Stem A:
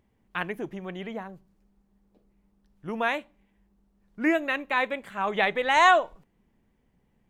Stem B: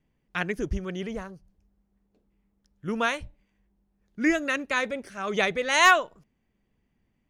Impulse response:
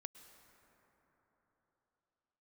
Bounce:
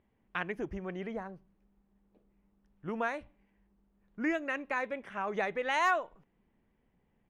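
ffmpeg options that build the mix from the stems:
-filter_complex "[0:a]lowpass=f=3.6k:w=0.5412,lowpass=f=3.6k:w=1.3066,acompressor=threshold=-33dB:ratio=2.5,volume=-3dB[a];[1:a]adelay=0.5,volume=-14dB[b];[a][b]amix=inputs=2:normalize=0,bass=f=250:g=-3,treble=f=4k:g=-5"

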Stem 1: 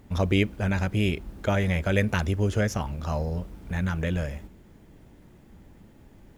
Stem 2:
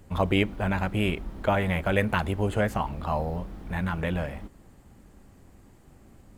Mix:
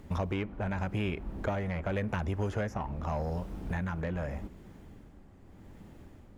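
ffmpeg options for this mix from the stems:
-filter_complex "[0:a]tremolo=f=0.85:d=0.78,volume=0.5dB[a];[1:a]lowpass=f=2k:p=1,asoftclip=type=tanh:threshold=-23dB,volume=-2.5dB[b];[a][b]amix=inputs=2:normalize=0,acrossover=split=750|2600[c][d][e];[c]acompressor=threshold=-32dB:ratio=4[f];[d]acompressor=threshold=-38dB:ratio=4[g];[e]acompressor=threshold=-56dB:ratio=4[h];[f][g][h]amix=inputs=3:normalize=0,highshelf=f=12k:g=-5.5"

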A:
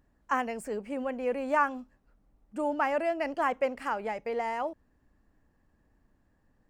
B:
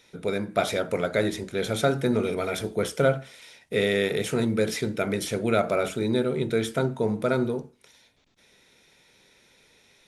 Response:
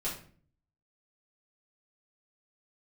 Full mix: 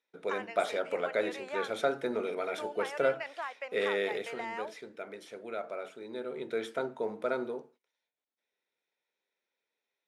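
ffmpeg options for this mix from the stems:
-filter_complex "[0:a]bandpass=f=2.6k:t=q:w=0.64:csg=0,acompressor=threshold=-37dB:ratio=5,volume=2dB[a];[1:a]lowpass=f=2.1k:p=1,volume=4.5dB,afade=t=out:st=4.08:d=0.33:silence=0.354813,afade=t=in:st=6.06:d=0.53:silence=0.398107[b];[a][b]amix=inputs=2:normalize=0,highpass=430,agate=range=-20dB:threshold=-59dB:ratio=16:detection=peak"

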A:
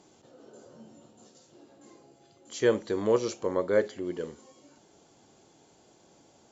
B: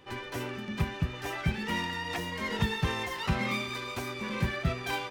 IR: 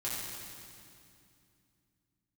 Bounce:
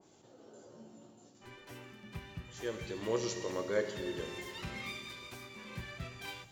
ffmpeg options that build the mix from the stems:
-filter_complex "[0:a]volume=1.5dB,afade=t=out:st=1.07:d=0.46:silence=0.237137,afade=t=in:st=2.69:d=0.53:silence=0.421697,asplit=3[a][b][c];[b]volume=-7dB[d];[1:a]adelay=1350,volume=-16dB,asplit=2[e][f];[f]volume=-15.5dB[g];[c]apad=whole_len=284481[h];[e][h]sidechaincompress=threshold=-45dB:ratio=8:attack=16:release=304[i];[2:a]atrim=start_sample=2205[j];[d][g]amix=inputs=2:normalize=0[k];[k][j]afir=irnorm=-1:irlink=0[l];[a][i][l]amix=inputs=3:normalize=0,adynamicequalizer=threshold=0.00158:dfrequency=1800:dqfactor=0.7:tfrequency=1800:tqfactor=0.7:attack=5:release=100:ratio=0.375:range=4:mode=boostabove:tftype=highshelf"

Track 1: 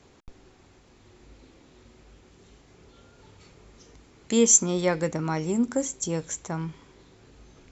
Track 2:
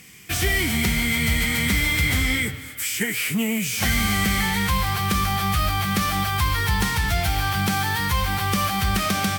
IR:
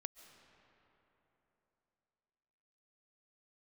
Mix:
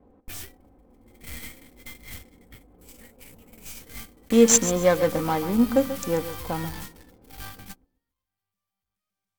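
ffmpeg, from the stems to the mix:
-filter_complex "[0:a]equalizer=f=700:w=0.88:g=4.5,aecho=1:1:3.9:0.61,adynamicsmooth=sensitivity=3:basefreq=590,volume=0dB,asplit=3[a][b][c];[b]volume=-12dB[d];[1:a]highshelf=f=7.1k:g=10.5,aeval=exprs='(tanh(35.5*val(0)+0.8)-tanh(0.8))/35.5':c=same,acontrast=78,volume=-12.5dB[e];[c]apad=whole_len=413884[f];[e][f]sidechaingate=range=-50dB:threshold=-50dB:ratio=16:detection=peak[g];[d]aecho=0:1:136|272|408|544:1|0.25|0.0625|0.0156[h];[a][g][h]amix=inputs=3:normalize=0"

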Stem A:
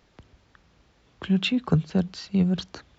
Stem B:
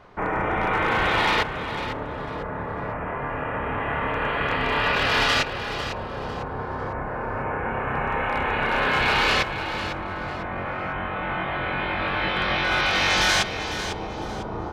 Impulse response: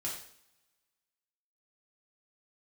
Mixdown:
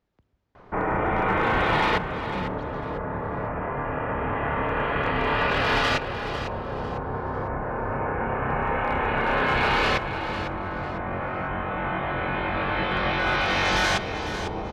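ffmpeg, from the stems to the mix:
-filter_complex "[0:a]volume=-14.5dB[a];[1:a]adelay=550,volume=1.5dB[b];[a][b]amix=inputs=2:normalize=0,highshelf=f=2.2k:g=-9.5"

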